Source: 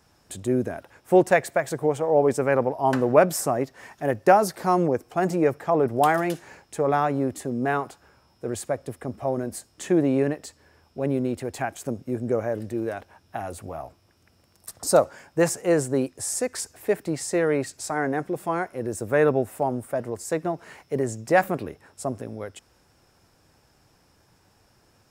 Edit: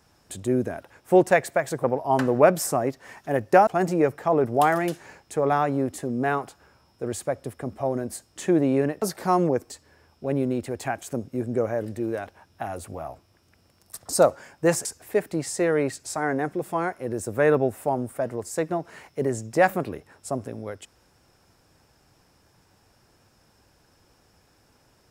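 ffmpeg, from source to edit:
ffmpeg -i in.wav -filter_complex "[0:a]asplit=6[link_01][link_02][link_03][link_04][link_05][link_06];[link_01]atrim=end=1.842[link_07];[link_02]atrim=start=2.578:end=4.412[link_08];[link_03]atrim=start=5.088:end=10.442[link_09];[link_04]atrim=start=4.408:end=5.092[link_10];[link_05]atrim=start=10.438:end=15.592[link_11];[link_06]atrim=start=16.588[link_12];[link_07][link_08]acrossfade=duration=0.004:curve1=hsin:curve2=hsin[link_13];[link_13][link_09]acrossfade=duration=0.004:curve1=hsin:curve2=hsin[link_14];[link_14][link_10]acrossfade=duration=0.004:curve1=hsin:curve2=hsin[link_15];[link_15][link_11]acrossfade=duration=0.004:curve1=hsin:curve2=hsin[link_16];[link_16][link_12]acrossfade=duration=0.004:curve1=hsin:curve2=hsin" out.wav

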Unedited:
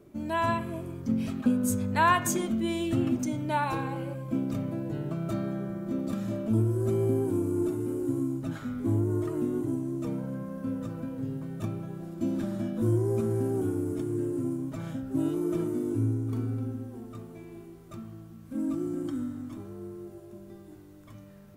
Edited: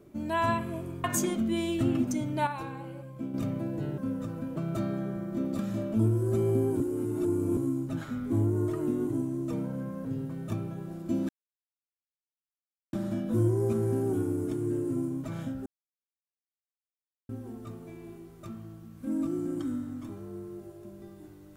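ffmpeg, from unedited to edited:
ffmpeg -i in.wav -filter_complex "[0:a]asplit=12[link_01][link_02][link_03][link_04][link_05][link_06][link_07][link_08][link_09][link_10][link_11][link_12];[link_01]atrim=end=1.042[link_13];[link_02]atrim=start=2.158:end=3.592[link_14];[link_03]atrim=start=3.588:end=4.462,asetpts=PTS-STARTPTS,volume=-7dB[link_15];[link_04]atrim=start=4.458:end=5.102[link_16];[link_05]atrim=start=10.588:end=11.172[link_17];[link_06]atrim=start=5.098:end=7.342[link_18];[link_07]atrim=start=7.338:end=8.112,asetpts=PTS-STARTPTS,areverse[link_19];[link_08]atrim=start=8.108:end=10.592[link_20];[link_09]atrim=start=11.168:end=12.41,asetpts=PTS-STARTPTS,afade=type=out:start_time=1.238:duration=0.004:curve=hsin,apad=pad_dur=1.64[link_21];[link_10]atrim=start=12.41:end=15.14,asetpts=PTS-STARTPTS,afade=type=in:duration=0.004:curve=hsin,afade=type=out:start_time=2.726:duration=0.004:curve=hsin[link_22];[link_11]atrim=start=15.14:end=16.77,asetpts=PTS-STARTPTS,volume=0[link_23];[link_12]atrim=start=16.77,asetpts=PTS-STARTPTS,afade=type=in:duration=0.004:curve=hsin[link_24];[link_13][link_14]acrossfade=duration=0.004:curve1=hsin:curve2=hsin[link_25];[link_25][link_15]acrossfade=duration=0.004:curve1=hsin:curve2=hsin[link_26];[link_26][link_16]acrossfade=duration=0.004:curve1=hsin:curve2=hsin[link_27];[link_27][link_17]acrossfade=duration=0.004:curve1=hsin:curve2=hsin[link_28];[link_28][link_18]acrossfade=duration=0.004:curve1=hsin:curve2=hsin[link_29];[link_29][link_19]acrossfade=duration=0.004:curve1=hsin:curve2=hsin[link_30];[link_30][link_20]acrossfade=duration=0.004:curve1=hsin:curve2=hsin[link_31];[link_21][link_22][link_23][link_24]concat=n=4:v=0:a=1[link_32];[link_31][link_32]acrossfade=duration=0.004:curve1=hsin:curve2=hsin" out.wav

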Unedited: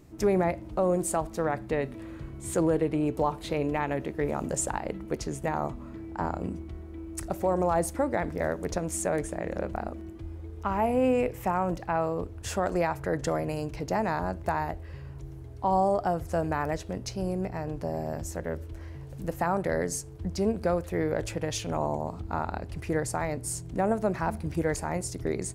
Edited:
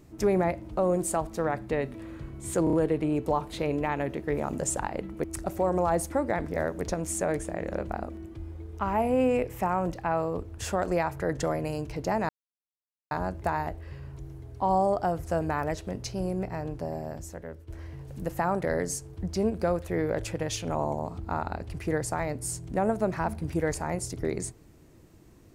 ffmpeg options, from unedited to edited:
ffmpeg -i in.wav -filter_complex "[0:a]asplit=7[link_01][link_02][link_03][link_04][link_05][link_06][link_07];[link_01]atrim=end=2.672[link_08];[link_02]atrim=start=2.638:end=2.672[link_09];[link_03]atrim=start=2.638:end=2.672[link_10];[link_04]atrim=start=2.638:end=5.152[link_11];[link_05]atrim=start=7.078:end=14.13,asetpts=PTS-STARTPTS,afade=type=out:start_time=7.048:duration=0.004:curve=hsin,apad=pad_dur=0.82[link_12];[link_06]atrim=start=14.13:end=18.7,asetpts=PTS-STARTPTS,afade=type=in:duration=0.004:curve=hsin,afade=type=out:start_time=3.5:duration=1.07:silence=0.281838[link_13];[link_07]atrim=start=18.7,asetpts=PTS-STARTPTS,afade=type=in:duration=0.004:curve=hsin:silence=0.281838[link_14];[link_08][link_09]acrossfade=duration=0.004:curve1=hsin:curve2=hsin[link_15];[link_15][link_10]acrossfade=duration=0.004:curve1=hsin:curve2=hsin[link_16];[link_16][link_11]acrossfade=duration=0.004:curve1=hsin:curve2=hsin[link_17];[link_12][link_13][link_14]concat=n=3:v=0:a=1[link_18];[link_17][link_18]acrossfade=duration=0.004:curve1=hsin:curve2=hsin" out.wav

